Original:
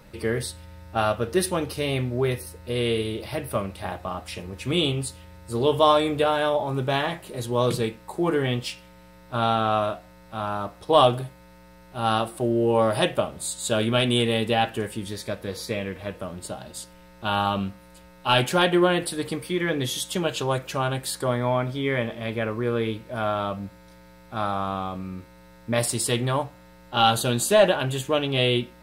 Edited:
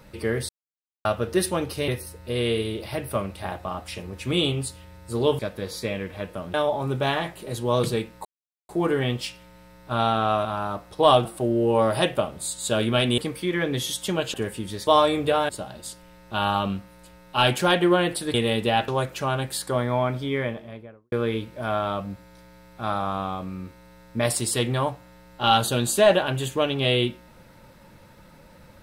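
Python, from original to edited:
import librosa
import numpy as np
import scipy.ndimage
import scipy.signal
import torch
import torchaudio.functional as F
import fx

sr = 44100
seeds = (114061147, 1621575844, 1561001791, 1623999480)

y = fx.studio_fade_out(x, sr, start_s=21.72, length_s=0.93)
y = fx.edit(y, sr, fx.silence(start_s=0.49, length_s=0.56),
    fx.cut(start_s=1.88, length_s=0.4),
    fx.swap(start_s=5.79, length_s=0.62, other_s=15.25, other_length_s=1.15),
    fx.insert_silence(at_s=8.12, length_s=0.44),
    fx.cut(start_s=9.88, length_s=0.47),
    fx.cut(start_s=11.15, length_s=1.1),
    fx.swap(start_s=14.18, length_s=0.54, other_s=19.25, other_length_s=1.16), tone=tone)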